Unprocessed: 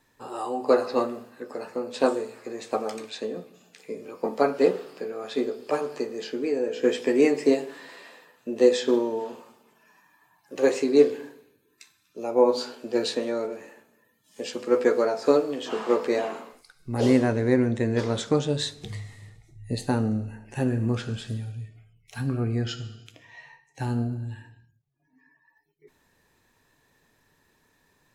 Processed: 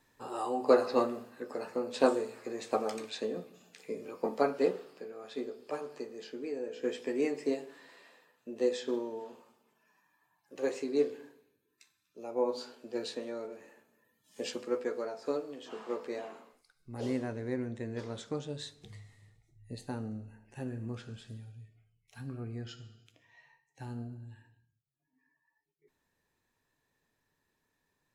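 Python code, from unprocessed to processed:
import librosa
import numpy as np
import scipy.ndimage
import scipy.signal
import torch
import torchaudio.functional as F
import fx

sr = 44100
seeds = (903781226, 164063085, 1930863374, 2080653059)

y = fx.gain(x, sr, db=fx.line((4.07, -3.5), (5.08, -11.5), (13.44, -11.5), (14.48, -3.5), (14.83, -14.0)))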